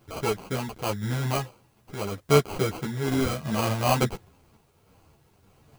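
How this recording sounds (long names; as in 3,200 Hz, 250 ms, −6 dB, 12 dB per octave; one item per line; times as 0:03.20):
aliases and images of a low sample rate 1,800 Hz, jitter 0%
sample-and-hold tremolo
a quantiser's noise floor 12 bits, dither triangular
a shimmering, thickened sound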